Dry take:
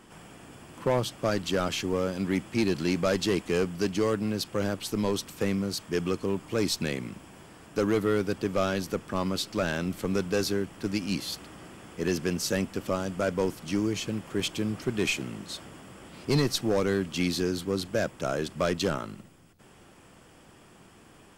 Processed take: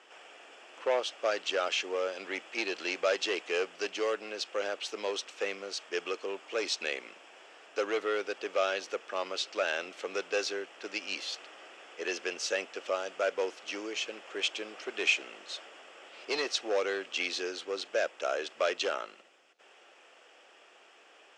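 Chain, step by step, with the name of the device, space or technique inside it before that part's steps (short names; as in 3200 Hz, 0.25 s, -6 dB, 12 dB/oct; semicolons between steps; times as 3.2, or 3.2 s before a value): phone speaker on a table (speaker cabinet 470–6400 Hz, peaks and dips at 1000 Hz -6 dB, 2700 Hz +5 dB, 4600 Hz -4 dB)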